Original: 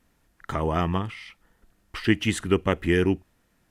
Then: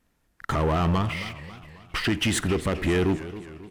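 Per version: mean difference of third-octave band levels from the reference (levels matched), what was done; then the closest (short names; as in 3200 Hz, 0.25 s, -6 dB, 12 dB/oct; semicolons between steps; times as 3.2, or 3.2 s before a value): 7.5 dB: limiter -17 dBFS, peak gain reduction 9.5 dB; sample leveller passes 2; speakerphone echo 90 ms, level -16 dB; warbling echo 0.267 s, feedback 51%, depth 182 cents, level -14.5 dB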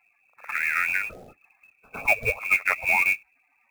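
15.5 dB: bin magnitudes rounded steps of 30 dB; reverse echo 0.108 s -19.5 dB; inverted band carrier 2600 Hz; short-mantissa float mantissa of 2-bit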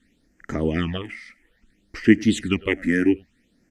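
5.5 dB: high shelf 7100 Hz -10 dB; echo 97 ms -23.5 dB; phaser stages 8, 0.6 Hz, lowest notch 110–3800 Hz; graphic EQ 125/250/500/1000/2000/4000/8000 Hz -3/+11/+4/-11/+12/+7/+8 dB; gain -1.5 dB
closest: third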